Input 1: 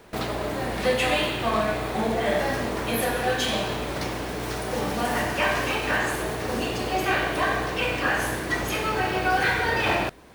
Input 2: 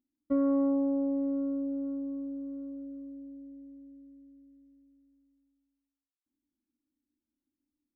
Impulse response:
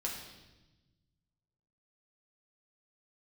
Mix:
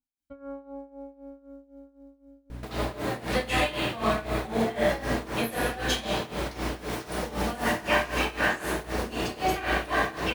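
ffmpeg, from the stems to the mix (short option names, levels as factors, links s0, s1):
-filter_complex "[0:a]aeval=exprs='val(0)+0.0178*(sin(2*PI*60*n/s)+sin(2*PI*2*60*n/s)/2+sin(2*PI*3*60*n/s)/3+sin(2*PI*4*60*n/s)/4+sin(2*PI*5*60*n/s)/5)':c=same,adelay=2500,volume=0.668,asplit=2[s0][s1];[s1]volume=0.668[s2];[1:a]equalizer=f=300:t=o:w=2.2:g=-13.5,aecho=1:1:1.3:0.85,adynamicequalizer=threshold=0.00141:dfrequency=1600:dqfactor=0.7:tfrequency=1600:tqfactor=0.7:attack=5:release=100:ratio=0.375:range=2:mode=boostabove:tftype=highshelf,volume=1.19[s3];[2:a]atrim=start_sample=2205[s4];[s2][s4]afir=irnorm=-1:irlink=0[s5];[s0][s3][s5]amix=inputs=3:normalize=0,tremolo=f=3.9:d=0.84"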